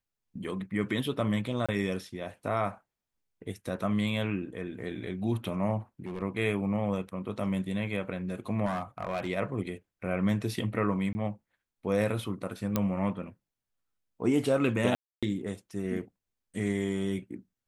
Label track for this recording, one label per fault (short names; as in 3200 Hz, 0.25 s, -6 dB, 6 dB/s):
1.660000	1.690000	gap 26 ms
6.050000	6.230000	clipped -32 dBFS
8.650000	9.290000	clipped -26.5 dBFS
11.130000	11.150000	gap 20 ms
12.760000	12.760000	pop -12 dBFS
14.950000	15.230000	gap 0.276 s